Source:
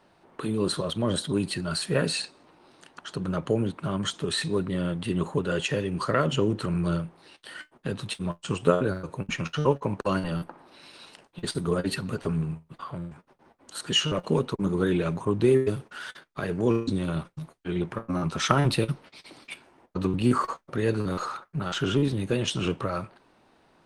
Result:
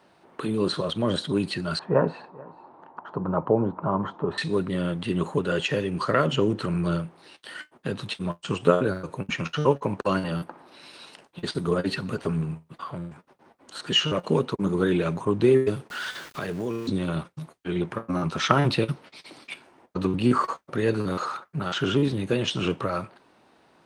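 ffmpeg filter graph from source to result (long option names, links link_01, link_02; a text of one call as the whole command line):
ffmpeg -i in.wav -filter_complex "[0:a]asettb=1/sr,asplit=3[link_01][link_02][link_03];[link_01]atrim=end=1.794[link_04];[link_02]atrim=start=1.79:end=4.38,asetpts=PTS-STARTPTS,afade=type=in:duration=0.004:curve=qsin,afade=type=out:start_time=2.586:duration=0.004:curve=qsin,lowpass=frequency=940:width_type=q:width=3.5,aecho=1:1:434:0.0708,atrim=end_sample=114219[link_05];[link_03]atrim=start=4.376[link_06];[link_04][link_05]acrossfade=duration=0.004:curve1=hsin:curve2=qsin[link_07];[link_07][link_06]acrossfade=duration=0.004:curve1=qsin:curve2=hsin,asettb=1/sr,asplit=3[link_08][link_09][link_10];[link_08]atrim=end=15.904[link_11];[link_09]atrim=start=15.9:end=16.89,asetpts=PTS-STARTPTS,afade=type=in:duration=0.004:curve=qsin,afade=type=out:start_time=0.986:duration=0.004:curve=qsin,aeval=exprs='val(0)+0.5*0.0112*sgn(val(0))':channel_layout=same,highshelf=frequency=5500:gain=10,acompressor=threshold=-29dB:ratio=3:attack=3.2:release=140:knee=1:detection=peak[link_12];[link_10]atrim=start=16.886[link_13];[link_11][link_12]acrossfade=duration=0.004:curve1=hsin:curve2=qsin[link_14];[link_14][link_13]acrossfade=duration=0.004:curve1=qsin:curve2=hsin,acrossover=split=5700[link_15][link_16];[link_16]acompressor=threshold=-54dB:ratio=4:attack=1:release=60[link_17];[link_15][link_17]amix=inputs=2:normalize=0,highpass=frequency=120:poles=1,volume=2.5dB" out.wav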